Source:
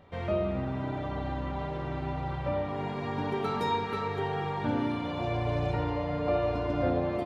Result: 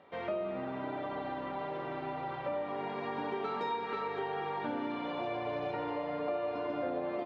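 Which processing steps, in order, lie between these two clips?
BPF 300–3600 Hz; compressor 3:1, threshold -33 dBFS, peak gain reduction 7 dB

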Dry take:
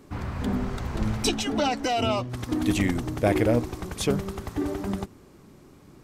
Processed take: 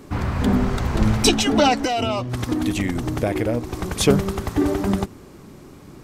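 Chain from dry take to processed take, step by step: 1.73–3.95 compressor 5:1, threshold -28 dBFS, peak gain reduction 10.5 dB; gain +8.5 dB

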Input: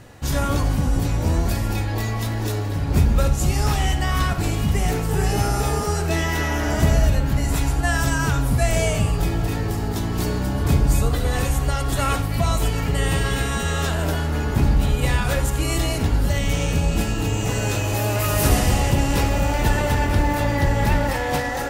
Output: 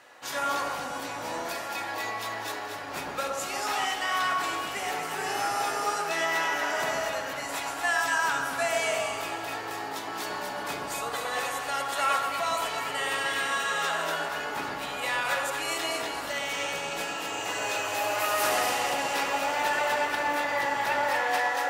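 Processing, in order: HPF 830 Hz 12 dB/oct; high shelf 4800 Hz -9.5 dB; echo with dull and thin repeats by turns 0.117 s, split 1400 Hz, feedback 59%, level -2 dB; on a send at -15.5 dB: reverb RT60 0.70 s, pre-delay 3 ms

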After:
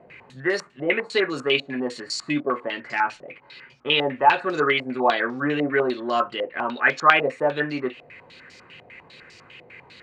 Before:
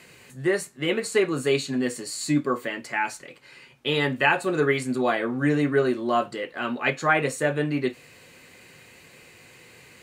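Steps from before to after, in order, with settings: dynamic EQ 120 Hz, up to -8 dB, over -41 dBFS, Q 0.71; in parallel at -4.5 dB: overloaded stage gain 15.5 dB; on the sum: stepped low-pass 10 Hz 690–5300 Hz; gain -4 dB

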